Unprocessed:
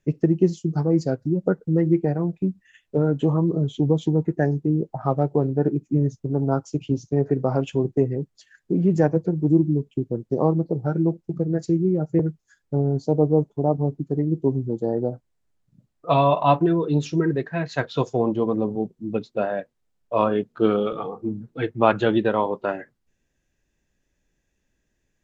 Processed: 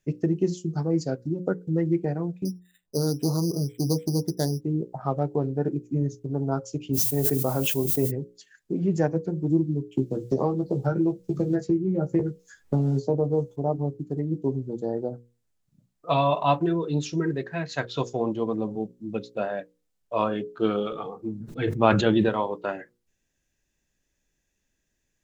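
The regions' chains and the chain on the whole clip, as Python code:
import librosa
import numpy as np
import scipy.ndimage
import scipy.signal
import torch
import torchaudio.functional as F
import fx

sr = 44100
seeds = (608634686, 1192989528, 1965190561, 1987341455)

y = fx.chain(x, sr, fx.lowpass(hz=1100.0, slope=12),
    fx.resample_bad(factor=8, down='none', up='hold'),
    fx.doppler_dist(depth_ms=0.12), at=(2.45, 4.61))
y = fx.dmg_noise_colour(y, sr, seeds[0], colour='violet', level_db=-42.0, at=(6.93, 8.1), fade=0.02)
y = fx.sustainer(y, sr, db_per_s=69.0, at=(6.93, 8.1), fade=0.02)
y = fx.chain(y, sr, fx.doubler(ms=15.0, db=-5.5),
    fx.band_squash(depth_pct=100), at=(9.92, 13.56))
y = fx.chain(y, sr, fx.low_shelf(hz=270.0, db=7.5),
    fx.sustainer(db_per_s=41.0), at=(21.4, 22.29))
y = fx.high_shelf(y, sr, hz=3400.0, db=8.5)
y = fx.hum_notches(y, sr, base_hz=60, count=9)
y = y * librosa.db_to_amplitude(-4.5)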